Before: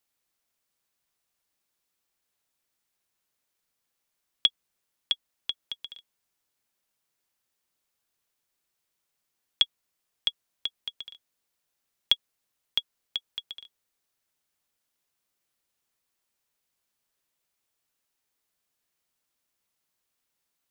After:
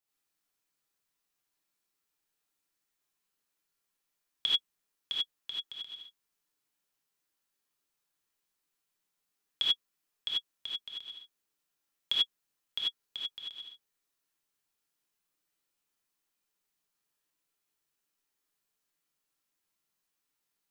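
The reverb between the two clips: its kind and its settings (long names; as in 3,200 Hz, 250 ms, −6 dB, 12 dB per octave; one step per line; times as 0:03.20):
reverb whose tail is shaped and stops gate 110 ms rising, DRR −6.5 dB
level −10.5 dB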